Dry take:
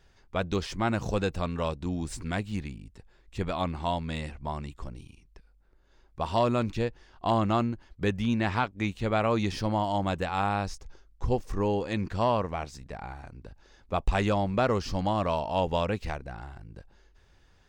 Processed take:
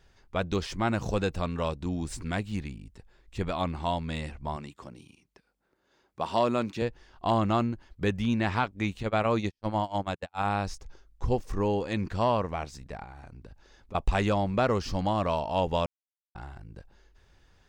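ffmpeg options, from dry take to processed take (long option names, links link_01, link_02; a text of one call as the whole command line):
ffmpeg -i in.wav -filter_complex "[0:a]asettb=1/sr,asplit=3[link_01][link_02][link_03];[link_01]atrim=end=4.564[link_04];[link_02]atrim=start=4.56:end=6.82,asetpts=PTS-STARTPTS,afade=type=in:duration=0.004:curve=qsin,afade=type=out:start_time=2.256:duration=0.004:curve=qsin,highpass=170[link_05];[link_03]atrim=start=6.816[link_06];[link_04][link_05]acrossfade=duration=0.004:curve1=hsin:curve2=qsin[link_07];[link_07][link_06]acrossfade=duration=0.004:curve1=qsin:curve2=hsin,asplit=3[link_08][link_09][link_10];[link_08]afade=type=out:start_time=9.02:duration=0.02[link_11];[link_09]agate=range=-53dB:threshold=-28dB:ratio=16:release=100:detection=peak,afade=type=in:start_time=9.02:duration=0.02,afade=type=out:start_time=10.45:duration=0.02[link_12];[link_10]afade=type=in:start_time=10.45:duration=0.02[link_13];[link_11][link_12][link_13]amix=inputs=3:normalize=0,asettb=1/sr,asplit=3[link_14][link_15][link_16];[link_14]atrim=end=13.034[link_17];[link_15]atrim=start=13.03:end=13.95,asetpts=PTS-STARTPTS,afade=type=in:duration=0.004:curve=qsin,afade=type=out:start_time=0.916:duration=0.004:curve=qsin,acompressor=threshold=-41dB:ratio=6:attack=3.2:release=140:knee=1:detection=peak[link_18];[link_16]atrim=start=13.946[link_19];[link_17][link_18]acrossfade=duration=0.004:curve1=hsin:curve2=qsin[link_20];[link_20][link_19]acrossfade=duration=0.004:curve1=qsin:curve2=hsin,asplit=3[link_21][link_22][link_23];[link_21]atrim=end=15.86,asetpts=PTS-STARTPTS,afade=type=out:start_time=15.856:duration=0.004:curve=hsin[link_24];[link_22]atrim=start=15.86:end=16.35,asetpts=PTS-STARTPTS,volume=0[link_25];[link_23]atrim=start=16.35,asetpts=PTS-STARTPTS,afade=type=in:duration=0.004:curve=hsin[link_26];[link_24][link_25][link_26]concat=n=3:v=0:a=1" out.wav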